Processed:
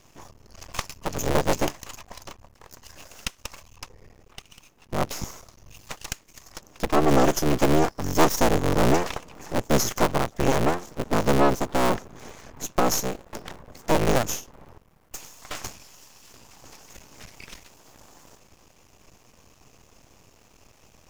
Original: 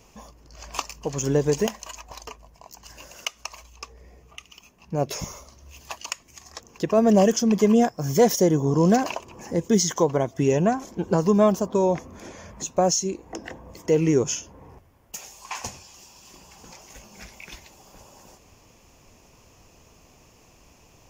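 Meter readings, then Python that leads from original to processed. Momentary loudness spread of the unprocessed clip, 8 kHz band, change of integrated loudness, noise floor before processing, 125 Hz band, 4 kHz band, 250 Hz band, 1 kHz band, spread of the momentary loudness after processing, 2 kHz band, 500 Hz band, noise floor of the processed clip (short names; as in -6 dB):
21 LU, -2.5 dB, -2.0 dB, -56 dBFS, -2.0 dB, +1.0 dB, -4.0 dB, +2.5 dB, 21 LU, +5.0 dB, -3.0 dB, -57 dBFS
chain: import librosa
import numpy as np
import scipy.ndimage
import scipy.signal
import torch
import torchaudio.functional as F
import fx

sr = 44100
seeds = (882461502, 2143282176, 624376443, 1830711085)

y = fx.cycle_switch(x, sr, every=3, mode='inverted')
y = np.maximum(y, 0.0)
y = y * librosa.db_to_amplitude(2.5)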